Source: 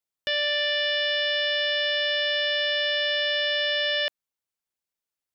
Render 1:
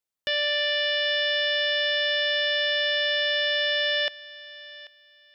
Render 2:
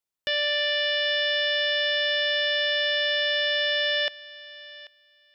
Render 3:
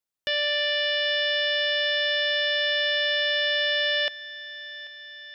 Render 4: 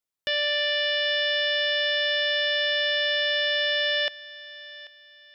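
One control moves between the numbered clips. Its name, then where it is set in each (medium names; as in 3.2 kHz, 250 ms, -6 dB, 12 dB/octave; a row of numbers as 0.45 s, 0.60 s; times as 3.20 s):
thinning echo, feedback: 23%, 15%, 68%, 35%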